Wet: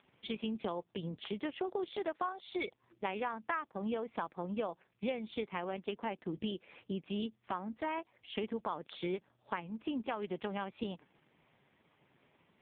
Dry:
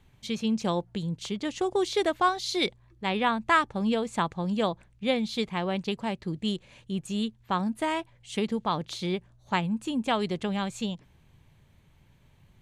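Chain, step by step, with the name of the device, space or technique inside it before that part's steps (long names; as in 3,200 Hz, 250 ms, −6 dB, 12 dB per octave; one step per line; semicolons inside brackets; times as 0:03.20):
0:09.54–0:10.35: dynamic equaliser 600 Hz, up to −3 dB, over −43 dBFS, Q 3.1
voicemail (band-pass filter 300–3,300 Hz; downward compressor 8 to 1, threshold −37 dBFS, peak gain reduction 19.5 dB; level +4 dB; AMR narrowband 4.75 kbit/s 8,000 Hz)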